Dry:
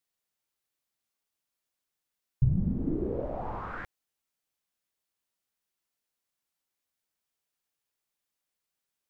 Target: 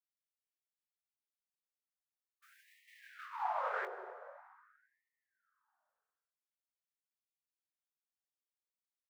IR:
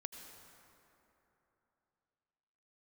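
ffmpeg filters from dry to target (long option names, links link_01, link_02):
-filter_complex "[0:a]lowshelf=frequency=160:gain=-10.5,asplit=2[link_01][link_02];[link_02]adelay=21,volume=-8dB[link_03];[link_01][link_03]amix=inputs=2:normalize=0,agate=range=-33dB:threshold=-28dB:ratio=3:detection=peak,asplit=2[link_04][link_05];[1:a]atrim=start_sample=2205[link_06];[link_05][link_06]afir=irnorm=-1:irlink=0,volume=0.5dB[link_07];[link_04][link_07]amix=inputs=2:normalize=0,afftfilt=real='re*gte(b*sr/1024,360*pow(1800/360,0.5+0.5*sin(2*PI*0.44*pts/sr)))':imag='im*gte(b*sr/1024,360*pow(1800/360,0.5+0.5*sin(2*PI*0.44*pts/sr)))':win_size=1024:overlap=0.75,volume=11dB"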